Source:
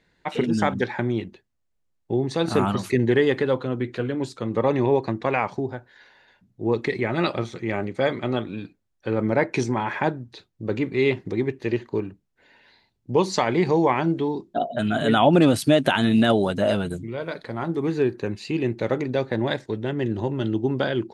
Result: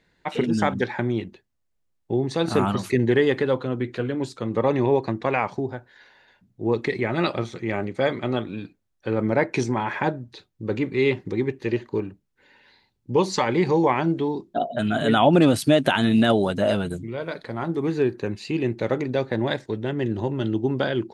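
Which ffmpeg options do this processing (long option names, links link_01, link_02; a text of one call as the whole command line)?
ffmpeg -i in.wav -filter_complex "[0:a]asettb=1/sr,asplit=3[link_01][link_02][link_03];[link_01]atrim=end=10.024[link_04];[link_02]atrim=start=10.02:end=13.84,asetpts=PTS-STARTPTS,afade=type=in:duration=0.004:curve=qsin,afade=type=out:start_time=3.816:duration=0.004:curve=qsin,asuperstop=centerf=670:order=20:qfactor=6.3[link_05];[link_03]atrim=start=13.836[link_06];[link_04][link_05]acrossfade=duration=0.004:curve1=hsin:curve2=qsin[link_07];[link_07][link_06]acrossfade=duration=0.004:curve1=qsin:curve2=hsin" out.wav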